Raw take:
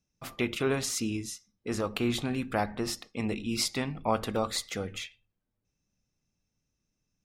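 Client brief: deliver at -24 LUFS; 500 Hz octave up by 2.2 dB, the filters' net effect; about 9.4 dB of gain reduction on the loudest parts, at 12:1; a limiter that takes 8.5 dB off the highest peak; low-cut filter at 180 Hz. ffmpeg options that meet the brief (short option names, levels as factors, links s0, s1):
-af "highpass=180,equalizer=f=500:t=o:g=3,acompressor=threshold=0.0282:ratio=12,volume=5.01,alimiter=limit=0.266:level=0:latency=1"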